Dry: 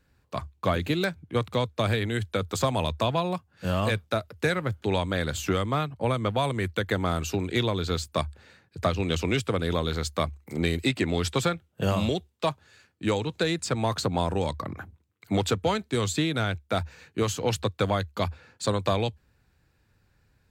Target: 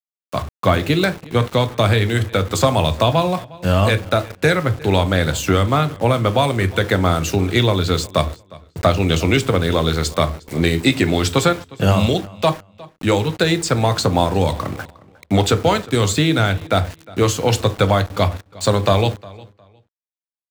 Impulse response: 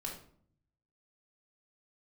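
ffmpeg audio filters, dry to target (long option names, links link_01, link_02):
-filter_complex "[0:a]asplit=2[link_01][link_02];[1:a]atrim=start_sample=2205,asetrate=83790,aresample=44100[link_03];[link_02][link_03]afir=irnorm=-1:irlink=0,volume=-0.5dB[link_04];[link_01][link_04]amix=inputs=2:normalize=0,aeval=exprs='val(0)*gte(abs(val(0)),0.0126)':channel_layout=same,asplit=2[link_05][link_06];[link_06]adelay=358,lowpass=frequency=5000:poles=1,volume=-21.5dB,asplit=2[link_07][link_08];[link_08]adelay=358,lowpass=frequency=5000:poles=1,volume=0.22[link_09];[link_05][link_07][link_09]amix=inputs=3:normalize=0,volume=7dB"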